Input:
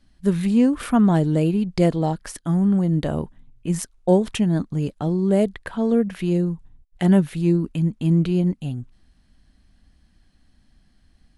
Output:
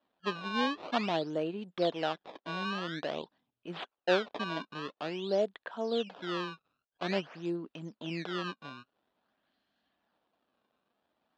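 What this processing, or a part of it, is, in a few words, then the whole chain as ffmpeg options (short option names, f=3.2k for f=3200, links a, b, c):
circuit-bent sampling toy: -af "acrusher=samples=19:mix=1:aa=0.000001:lfo=1:lforange=30.4:lforate=0.49,highpass=450,equalizer=f=650:t=q:w=4:g=3,equalizer=f=2.1k:t=q:w=4:g=-7,equalizer=f=3.5k:t=q:w=4:g=3,lowpass=f=4.1k:w=0.5412,lowpass=f=4.1k:w=1.3066,volume=-7dB"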